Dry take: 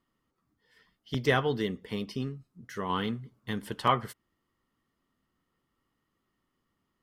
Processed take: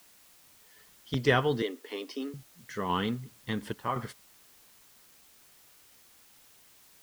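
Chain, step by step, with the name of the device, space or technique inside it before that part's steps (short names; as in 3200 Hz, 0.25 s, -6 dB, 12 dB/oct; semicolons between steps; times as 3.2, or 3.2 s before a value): worn cassette (LPF 8300 Hz; wow and flutter; level dips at 2.46/3.73, 0.228 s -8 dB; white noise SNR 24 dB); 1.62–2.34 elliptic high-pass 270 Hz, stop band 40 dB; gain +1 dB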